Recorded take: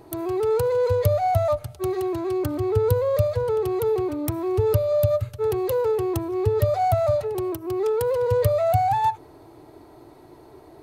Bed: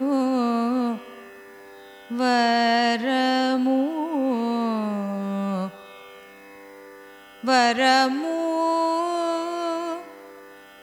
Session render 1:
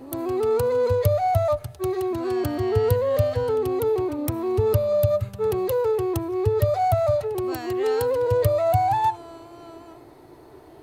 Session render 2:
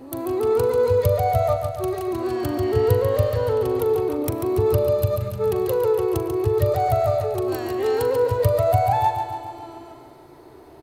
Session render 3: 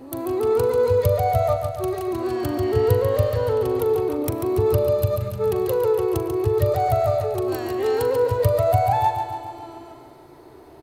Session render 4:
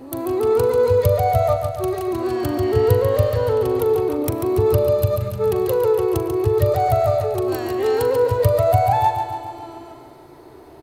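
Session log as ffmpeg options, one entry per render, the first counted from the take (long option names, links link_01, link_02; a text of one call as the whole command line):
ffmpeg -i in.wav -i bed.wav -filter_complex "[1:a]volume=-18dB[link_01];[0:a][link_01]amix=inputs=2:normalize=0" out.wav
ffmpeg -i in.wav -filter_complex "[0:a]asplit=2[link_01][link_02];[link_02]adelay=41,volume=-13dB[link_03];[link_01][link_03]amix=inputs=2:normalize=0,aecho=1:1:141|282|423|564|705|846|987|1128:0.447|0.264|0.155|0.0917|0.0541|0.0319|0.0188|0.0111" out.wav
ffmpeg -i in.wav -af anull out.wav
ffmpeg -i in.wav -af "volume=2.5dB" out.wav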